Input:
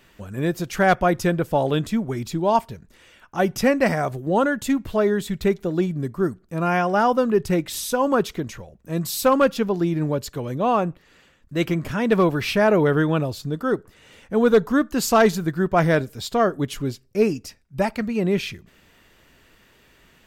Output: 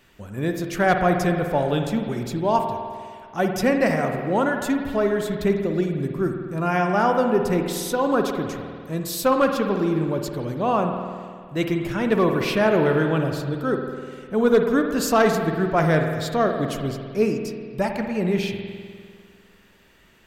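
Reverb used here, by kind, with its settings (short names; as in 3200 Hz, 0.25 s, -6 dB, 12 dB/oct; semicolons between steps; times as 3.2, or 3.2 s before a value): spring tank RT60 2 s, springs 50 ms, chirp 35 ms, DRR 4 dB; gain -2 dB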